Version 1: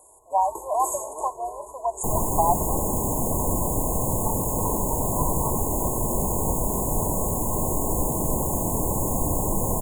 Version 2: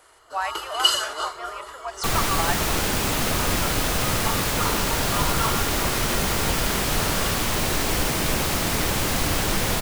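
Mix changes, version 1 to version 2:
speech -8.5 dB; master: remove brick-wall FIR band-stop 1100–6500 Hz

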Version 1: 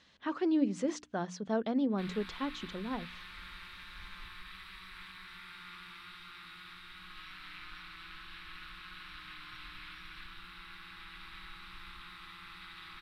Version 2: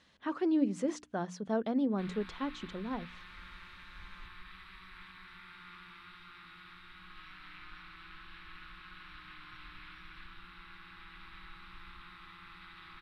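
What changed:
speech: remove air absorption 95 m; master: add high shelf 3500 Hz -11.5 dB

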